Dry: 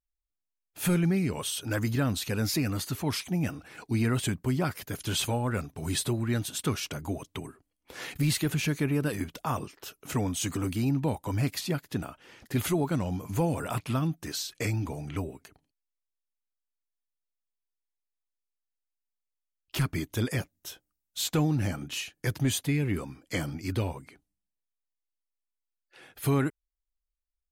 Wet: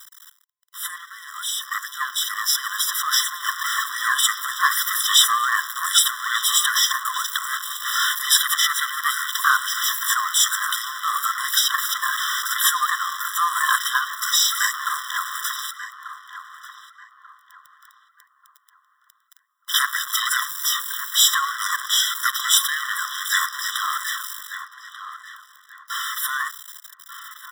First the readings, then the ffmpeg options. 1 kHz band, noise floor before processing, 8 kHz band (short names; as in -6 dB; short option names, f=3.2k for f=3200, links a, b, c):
+16.0 dB, under -85 dBFS, +16.0 dB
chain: -filter_complex "[0:a]aeval=exprs='val(0)+0.5*0.0251*sgn(val(0))':c=same,dynaudnorm=f=700:g=7:m=13.5dB,aeval=exprs='val(0)*sin(2*PI*350*n/s)':c=same,asplit=2[a][b];[b]adelay=1189,lowpass=f=1.7k:p=1,volume=-9dB,asplit=2[c][d];[d]adelay=1189,lowpass=f=1.7k:p=1,volume=0.37,asplit=2[e][f];[f]adelay=1189,lowpass=f=1.7k:p=1,volume=0.37,asplit=2[g][h];[h]adelay=1189,lowpass=f=1.7k:p=1,volume=0.37[i];[c][e][g][i]amix=inputs=4:normalize=0[j];[a][j]amix=inputs=2:normalize=0,afftfilt=real='re*eq(mod(floor(b*sr/1024/1000),2),1)':imag='im*eq(mod(floor(b*sr/1024/1000),2),1)':win_size=1024:overlap=0.75,volume=6.5dB"